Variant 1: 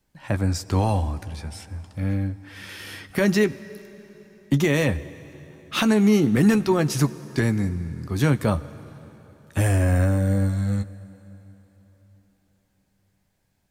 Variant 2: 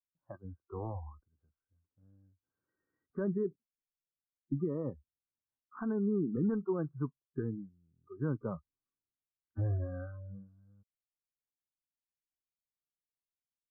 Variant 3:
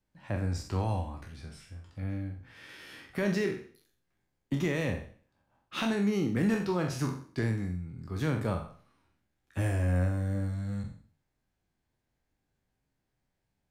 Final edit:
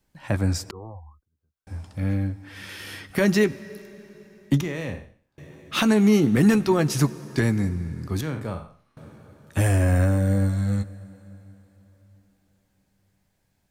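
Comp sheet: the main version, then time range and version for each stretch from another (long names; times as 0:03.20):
1
0:00.71–0:01.67: punch in from 2
0:04.61–0:05.38: punch in from 3
0:08.21–0:08.97: punch in from 3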